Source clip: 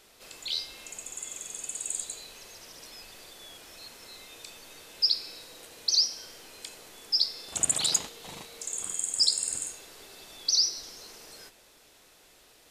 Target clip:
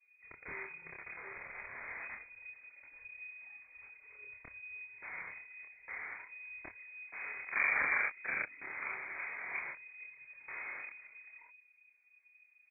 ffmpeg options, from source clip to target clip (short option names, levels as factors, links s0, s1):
-filter_complex "[0:a]bandreject=f=154.4:t=h:w=4,bandreject=f=308.8:t=h:w=4,bandreject=f=463.2:t=h:w=4,bandreject=f=617.6:t=h:w=4,bandreject=f=772:t=h:w=4,bandreject=f=926.4:t=h:w=4,bandreject=f=1080.8:t=h:w=4,bandreject=f=1235.2:t=h:w=4,bandreject=f=1389.6:t=h:w=4,bandreject=f=1544:t=h:w=4,bandreject=f=1698.4:t=h:w=4,bandreject=f=1852.8:t=h:w=4,anlmdn=0.158,adynamicequalizer=threshold=0.00141:dfrequency=230:dqfactor=0.94:tfrequency=230:tqfactor=0.94:attack=5:release=100:ratio=0.375:range=2:mode=boostabove:tftype=bell,acrossover=split=1800[s0][s1];[s1]acompressor=threshold=0.00891:ratio=6[s2];[s0][s2]amix=inputs=2:normalize=0,asplit=2[s3][s4];[s4]adelay=27,volume=0.75[s5];[s3][s5]amix=inputs=2:normalize=0,lowpass=f=2100:t=q:w=0.5098,lowpass=f=2100:t=q:w=0.6013,lowpass=f=2100:t=q:w=0.9,lowpass=f=2100:t=q:w=2.563,afreqshift=-2500,volume=2.51"